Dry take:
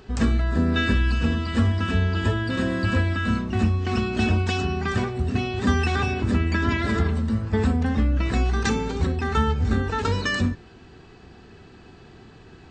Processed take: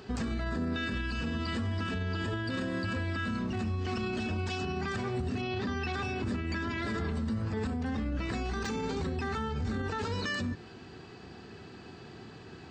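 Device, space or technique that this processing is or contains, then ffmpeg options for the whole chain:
broadcast voice chain: -filter_complex "[0:a]highpass=93,deesser=0.6,acompressor=threshold=-24dB:ratio=6,equalizer=frequency=4700:width_type=o:width=0.21:gain=4.5,alimiter=level_in=1.5dB:limit=-24dB:level=0:latency=1:release=39,volume=-1.5dB,asplit=3[link_01][link_02][link_03];[link_01]afade=type=out:start_time=5.41:duration=0.02[link_04];[link_02]lowpass=frequency=5500:width=0.5412,lowpass=frequency=5500:width=1.3066,afade=type=in:start_time=5.41:duration=0.02,afade=type=out:start_time=5.92:duration=0.02[link_05];[link_03]afade=type=in:start_time=5.92:duration=0.02[link_06];[link_04][link_05][link_06]amix=inputs=3:normalize=0"

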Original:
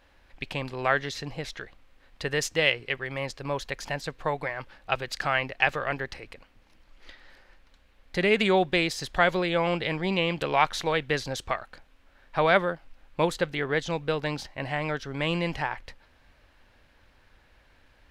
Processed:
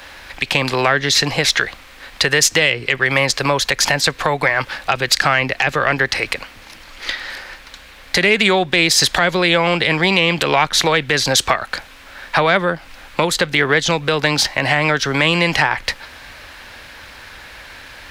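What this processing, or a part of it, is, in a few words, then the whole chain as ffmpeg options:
mastering chain: -filter_complex "[0:a]highpass=frequency=44:poles=1,equalizer=frequency=2900:width_type=o:width=0.3:gain=-2.5,acrossover=split=120|390[link_01][link_02][link_03];[link_01]acompressor=threshold=-48dB:ratio=4[link_04];[link_02]acompressor=threshold=-34dB:ratio=4[link_05];[link_03]acompressor=threshold=-34dB:ratio=4[link_06];[link_04][link_05][link_06]amix=inputs=3:normalize=0,acompressor=threshold=-39dB:ratio=1.5,asoftclip=type=tanh:threshold=-22dB,tiltshelf=frequency=890:gain=-6,alimiter=level_in=24dB:limit=-1dB:release=50:level=0:latency=1,volume=-1dB"

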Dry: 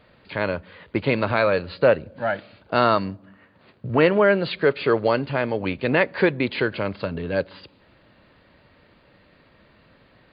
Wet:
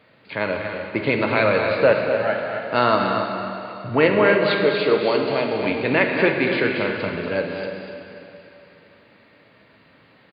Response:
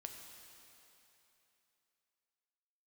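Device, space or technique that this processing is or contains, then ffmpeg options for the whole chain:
stadium PA: -filter_complex "[0:a]asettb=1/sr,asplit=3[link_01][link_02][link_03];[link_01]atrim=end=4.484[link_04];[link_02]atrim=start=4.48:end=5.52,asetpts=PTS-STARTPTS,afade=type=in:duration=0.004:curve=qsin,afade=type=out:start_time=1.036:duration=0.004:curve=qsin,equalizer=frequency=100:width_type=o:width=0.67:gain=-9,equalizer=frequency=1600:width_type=o:width=0.67:gain=-9,equalizer=frequency=4000:width_type=o:width=0.67:gain=6[link_05];[link_03]atrim=start=5.516[link_06];[link_04][link_05]acrossfade=duration=0.004:curve1=hsin:curve2=qsin[link_07];[link_07][link_06]acrossfade=duration=0.004:curve1=qsin:curve2=hsin,highpass=130,equalizer=frequency=2200:width_type=o:width=0.43:gain=4,aecho=1:1:236.2|282.8:0.398|0.282[link_08];[1:a]atrim=start_sample=2205[link_09];[link_08][link_09]afir=irnorm=-1:irlink=0,volume=5.5dB"

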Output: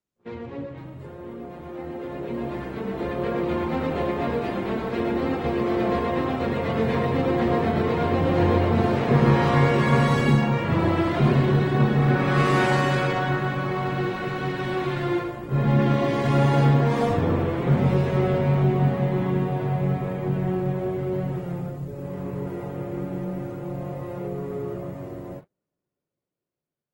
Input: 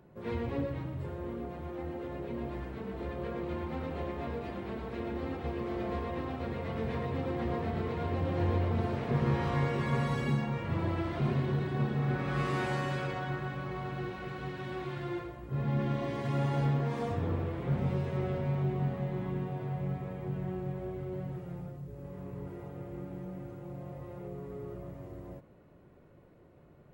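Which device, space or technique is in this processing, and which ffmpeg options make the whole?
video call: -af "highpass=120,dynaudnorm=framelen=670:gausssize=7:maxgain=12.5dB,agate=range=-34dB:threshold=-40dB:ratio=16:detection=peak" -ar 48000 -c:a libopus -b:a 24k

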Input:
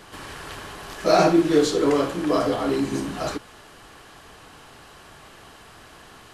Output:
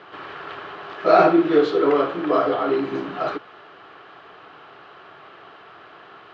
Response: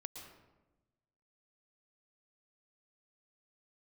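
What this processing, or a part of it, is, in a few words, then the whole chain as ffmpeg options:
kitchen radio: -af "highpass=180,equalizer=frequency=230:width_type=q:width=4:gain=-8,equalizer=frequency=390:width_type=q:width=4:gain=5,equalizer=frequency=690:width_type=q:width=4:gain=4,equalizer=frequency=1300:width_type=q:width=4:gain=8,lowpass=frequency=3500:width=0.5412,lowpass=frequency=3500:width=1.3066"

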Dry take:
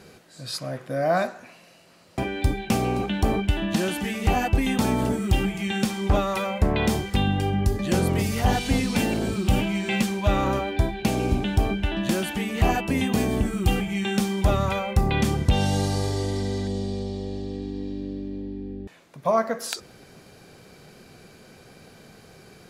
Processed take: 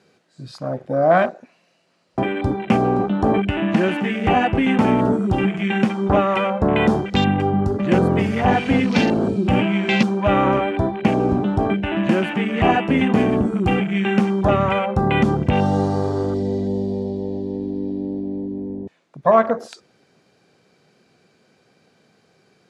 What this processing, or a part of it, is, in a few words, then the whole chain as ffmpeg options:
over-cleaned archive recording: -af "highpass=140,lowpass=7200,afwtdn=0.0224,volume=7.5dB"

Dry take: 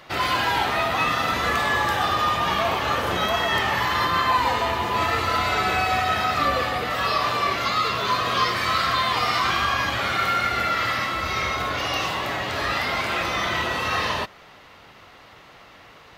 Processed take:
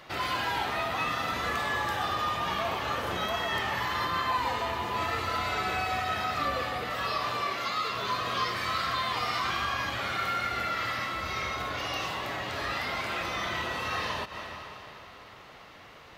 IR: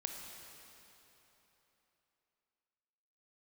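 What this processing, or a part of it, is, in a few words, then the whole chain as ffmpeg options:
ducked reverb: -filter_complex "[0:a]asplit=3[link_01][link_02][link_03];[1:a]atrim=start_sample=2205[link_04];[link_02][link_04]afir=irnorm=-1:irlink=0[link_05];[link_03]apad=whole_len=713317[link_06];[link_05][link_06]sidechaincompress=threshold=-39dB:ratio=8:attack=16:release=114,volume=2dB[link_07];[link_01][link_07]amix=inputs=2:normalize=0,asettb=1/sr,asplit=3[link_08][link_09][link_10];[link_08]atrim=end=7.444[link_11];[link_09]atrim=start=7.44:end=7.96,asetpts=PTS-STARTPTS,afade=type=in:duration=0.004:curve=qsin,afade=type=out:start_time=0.516:duration=0.004:curve=qsin,highpass=frequency=200:poles=1[link_12];[link_10]atrim=start=7.956[link_13];[link_11][link_12]acrossfade=duration=0.004:curve1=hsin:curve2=qsin[link_14];[link_14][link_13]acrossfade=duration=0.004:curve1=qsin:curve2=hsin,volume=-9dB"

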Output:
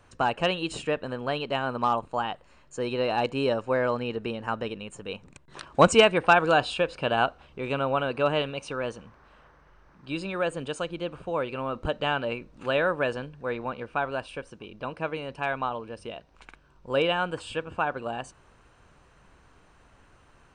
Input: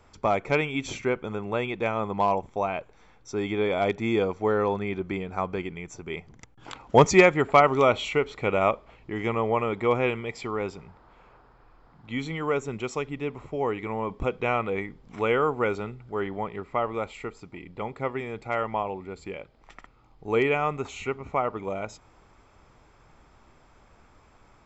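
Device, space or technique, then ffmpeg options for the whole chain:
nightcore: -af "asetrate=52920,aresample=44100,volume=-1dB"

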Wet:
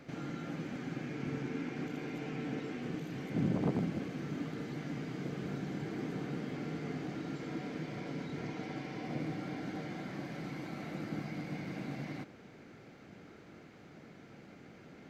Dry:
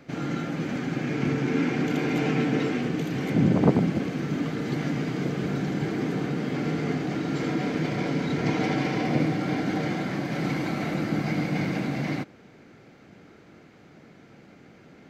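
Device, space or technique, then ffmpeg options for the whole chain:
de-esser from a sidechain: -filter_complex "[0:a]asplit=2[link_01][link_02];[link_02]highpass=4400,apad=whole_len=665641[link_03];[link_01][link_03]sidechaincompress=threshold=-58dB:ratio=4:attack=0.75:release=23,volume=-3dB"

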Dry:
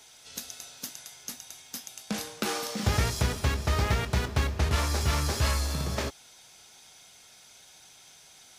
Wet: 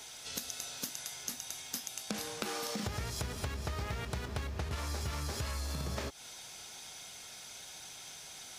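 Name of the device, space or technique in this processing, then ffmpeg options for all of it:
serial compression, peaks first: -af "acompressor=threshold=-34dB:ratio=6,acompressor=threshold=-43dB:ratio=2,volume=5dB"

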